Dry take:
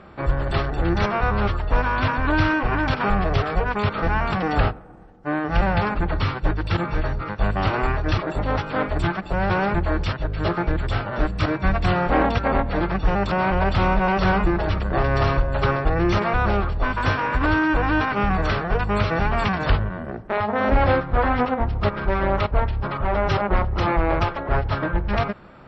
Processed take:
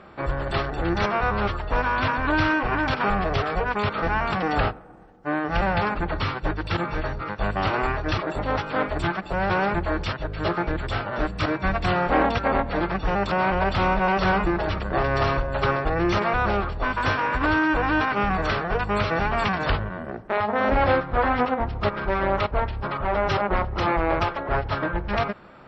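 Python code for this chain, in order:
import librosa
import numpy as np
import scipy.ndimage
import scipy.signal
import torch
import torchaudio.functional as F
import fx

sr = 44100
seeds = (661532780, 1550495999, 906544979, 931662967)

y = fx.low_shelf(x, sr, hz=190.0, db=-7.0)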